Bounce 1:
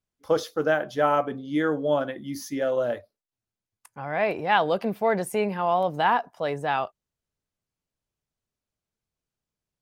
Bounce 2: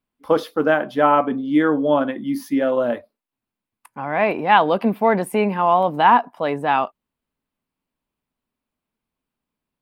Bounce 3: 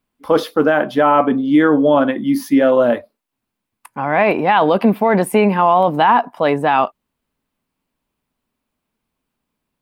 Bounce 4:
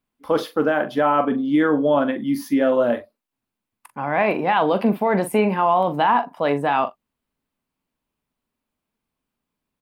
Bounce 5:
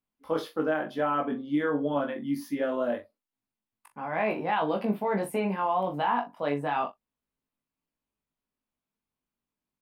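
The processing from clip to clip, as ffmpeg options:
ffmpeg -i in.wav -af "equalizer=frequency=100:width_type=o:width=0.67:gain=-7,equalizer=frequency=250:width_type=o:width=0.67:gain=10,equalizer=frequency=1000:width_type=o:width=0.67:gain=7,equalizer=frequency=2500:width_type=o:width=0.67:gain=4,equalizer=frequency=6300:width_type=o:width=0.67:gain=-11,volume=3dB" out.wav
ffmpeg -i in.wav -af "alimiter=limit=-11dB:level=0:latency=1:release=11,volume=7dB" out.wav
ffmpeg -i in.wav -filter_complex "[0:a]asplit=2[link_01][link_02];[link_02]adelay=42,volume=-11.5dB[link_03];[link_01][link_03]amix=inputs=2:normalize=0,volume=-5.5dB" out.wav
ffmpeg -i in.wav -af "flanger=delay=18.5:depth=2.4:speed=0.25,volume=-6dB" out.wav

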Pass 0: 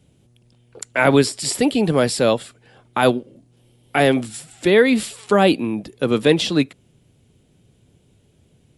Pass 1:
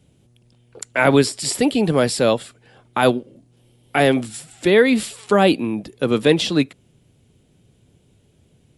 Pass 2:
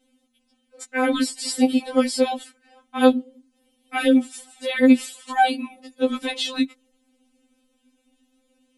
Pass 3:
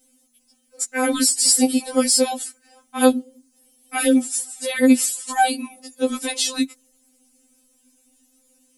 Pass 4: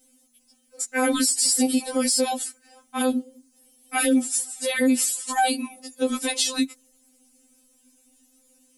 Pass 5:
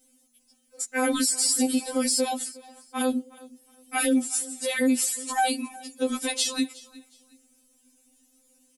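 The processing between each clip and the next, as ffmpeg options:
ffmpeg -i in.wav -af anull out.wav
ffmpeg -i in.wav -af "afftfilt=real='re*3.46*eq(mod(b,12),0)':imag='im*3.46*eq(mod(b,12),0)':win_size=2048:overlap=0.75,volume=-2dB" out.wav
ffmpeg -i in.wav -af "aexciter=amount=4.2:drive=7.4:freq=4900" out.wav
ffmpeg -i in.wav -af "alimiter=limit=-12.5dB:level=0:latency=1:release=54" out.wav
ffmpeg -i in.wav -af "aecho=1:1:364|728:0.0891|0.0223,volume=-2.5dB" out.wav

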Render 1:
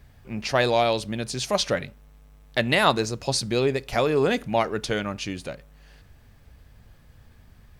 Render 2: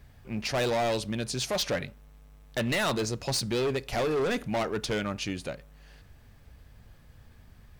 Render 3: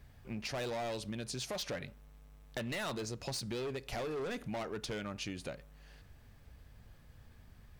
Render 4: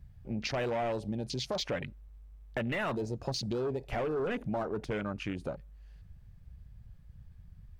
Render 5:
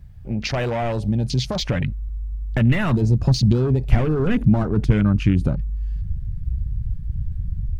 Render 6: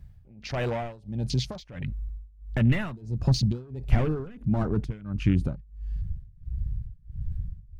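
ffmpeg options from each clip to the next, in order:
ffmpeg -i in.wav -af "volume=23dB,asoftclip=hard,volume=-23dB,volume=-1.5dB" out.wav
ffmpeg -i in.wav -af "acompressor=threshold=-33dB:ratio=6,volume=-4dB" out.wav
ffmpeg -i in.wav -af "afwtdn=0.00631,volume=6dB" out.wav
ffmpeg -i in.wav -af "asubboost=boost=9:cutoff=190,volume=9dB" out.wav
ffmpeg -i in.wav -af "tremolo=f=1.5:d=0.93,volume=-4.5dB" out.wav

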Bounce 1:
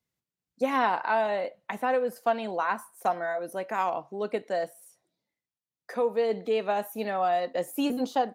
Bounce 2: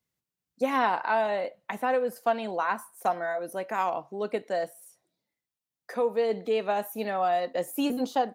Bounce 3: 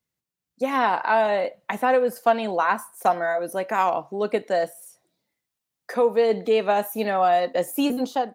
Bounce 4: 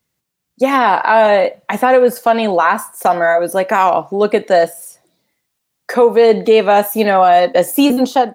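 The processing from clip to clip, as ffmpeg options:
ffmpeg -i in.wav -af "highshelf=frequency=9900:gain=3.5" out.wav
ffmpeg -i in.wav -af "dynaudnorm=framelen=340:gausssize=5:maxgain=6.5dB" out.wav
ffmpeg -i in.wav -af "alimiter=level_in=12.5dB:limit=-1dB:release=50:level=0:latency=1,volume=-1dB" out.wav

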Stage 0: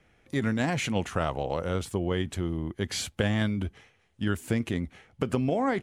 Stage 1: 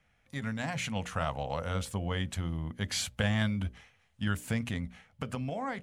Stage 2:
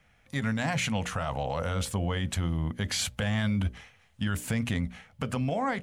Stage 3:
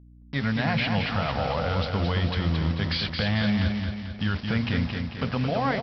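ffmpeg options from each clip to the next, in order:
ffmpeg -i in.wav -af "equalizer=frequency=360:width_type=o:width=0.65:gain=-14.5,bandreject=frequency=60:width_type=h:width=6,bandreject=frequency=120:width_type=h:width=6,bandreject=frequency=180:width_type=h:width=6,bandreject=frequency=240:width_type=h:width=6,bandreject=frequency=300:width_type=h:width=6,bandreject=frequency=360:width_type=h:width=6,bandreject=frequency=420:width_type=h:width=6,bandreject=frequency=480:width_type=h:width=6,bandreject=frequency=540:width_type=h:width=6,bandreject=frequency=600:width_type=h:width=6,dynaudnorm=framelen=200:gausssize=11:maxgain=5dB,volume=-5.5dB" out.wav
ffmpeg -i in.wav -af "alimiter=level_in=2.5dB:limit=-24dB:level=0:latency=1:release=16,volume=-2.5dB,volume=6.5dB" out.wav
ffmpeg -i in.wav -af "aresample=11025,acrusher=bits=6:mix=0:aa=0.000001,aresample=44100,aeval=exprs='val(0)+0.00251*(sin(2*PI*60*n/s)+sin(2*PI*2*60*n/s)/2+sin(2*PI*3*60*n/s)/3+sin(2*PI*4*60*n/s)/4+sin(2*PI*5*60*n/s)/5)':channel_layout=same,aecho=1:1:221|442|663|884|1105|1326:0.562|0.281|0.141|0.0703|0.0351|0.0176,volume=3dB" out.wav

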